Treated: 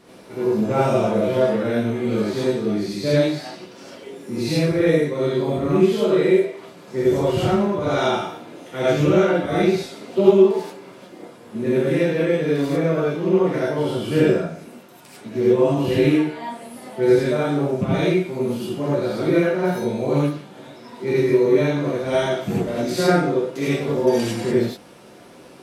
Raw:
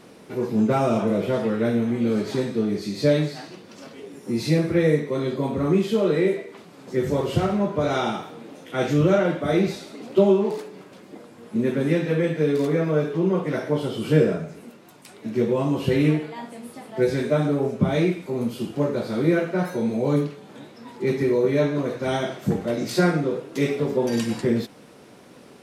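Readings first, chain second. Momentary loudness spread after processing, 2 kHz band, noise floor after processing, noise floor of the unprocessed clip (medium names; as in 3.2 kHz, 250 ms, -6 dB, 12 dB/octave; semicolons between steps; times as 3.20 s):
14 LU, +3.0 dB, -44 dBFS, -48 dBFS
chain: rattle on loud lows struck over -18 dBFS, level -29 dBFS; gated-style reverb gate 120 ms rising, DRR -7.5 dB; trim -4.5 dB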